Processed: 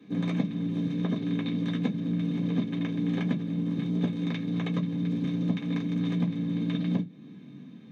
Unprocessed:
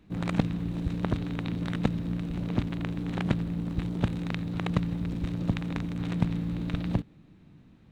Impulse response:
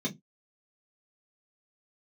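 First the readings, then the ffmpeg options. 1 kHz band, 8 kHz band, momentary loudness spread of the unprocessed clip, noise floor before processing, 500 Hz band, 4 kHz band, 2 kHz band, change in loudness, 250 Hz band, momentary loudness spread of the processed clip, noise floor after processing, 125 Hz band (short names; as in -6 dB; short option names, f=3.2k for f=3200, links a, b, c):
-5.5 dB, n/a, 3 LU, -56 dBFS, -0.5 dB, +1.0 dB, -2.0 dB, +1.5 dB, +3.5 dB, 2 LU, -47 dBFS, -0.5 dB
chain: -filter_complex "[0:a]highpass=83,equalizer=f=2.7k:w=0.34:g=5.5,acompressor=threshold=-37dB:ratio=3,bass=f=250:g=-7,treble=f=4k:g=1[a];[1:a]atrim=start_sample=2205[b];[a][b]afir=irnorm=-1:irlink=0,volume=-2dB"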